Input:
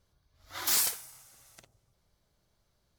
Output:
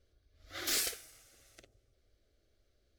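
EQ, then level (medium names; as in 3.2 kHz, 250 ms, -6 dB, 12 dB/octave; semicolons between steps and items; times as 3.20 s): low-pass 2.4 kHz 6 dB/octave; static phaser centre 390 Hz, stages 4; +4.0 dB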